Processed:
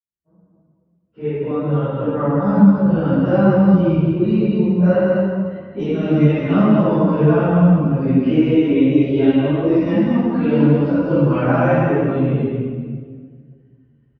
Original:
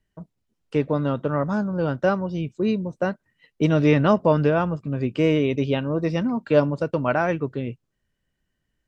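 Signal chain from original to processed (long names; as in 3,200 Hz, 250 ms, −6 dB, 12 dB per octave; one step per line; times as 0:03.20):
fade in at the beginning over 2.16 s
high-pass filter 64 Hz 12 dB per octave
low-pass that shuts in the quiet parts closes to 2,300 Hz, open at −15 dBFS
low-pass filter 5,100 Hz 12 dB per octave
low-shelf EQ 430 Hz +8.5 dB
downward compressor 5 to 1, threshold −18 dBFS, peak gain reduction 10.5 dB
time stretch by phase vocoder 1.6×
single-tap delay 205 ms −5 dB
convolution reverb RT60 1.8 s, pre-delay 16 ms, DRR −9.5 dB
string-ensemble chorus
level +1 dB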